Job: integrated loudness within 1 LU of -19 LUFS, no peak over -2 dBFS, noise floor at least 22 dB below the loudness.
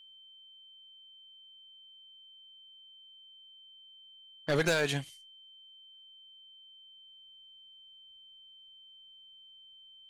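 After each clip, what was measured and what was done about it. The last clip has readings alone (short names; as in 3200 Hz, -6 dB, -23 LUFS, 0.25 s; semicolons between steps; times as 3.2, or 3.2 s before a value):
clipped 0.2%; flat tops at -22.0 dBFS; steady tone 3100 Hz; tone level -53 dBFS; loudness -31.0 LUFS; peak -22.0 dBFS; loudness target -19.0 LUFS
-> clip repair -22 dBFS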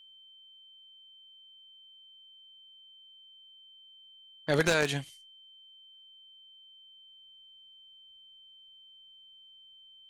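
clipped 0.0%; steady tone 3100 Hz; tone level -53 dBFS
-> notch 3100 Hz, Q 30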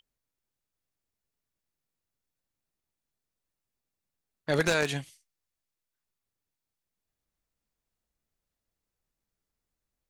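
steady tone none; loudness -28.5 LUFS; peak -13.0 dBFS; loudness target -19.0 LUFS
-> gain +9.5 dB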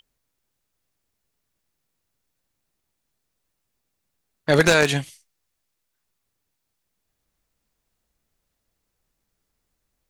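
loudness -19.0 LUFS; peak -3.5 dBFS; noise floor -78 dBFS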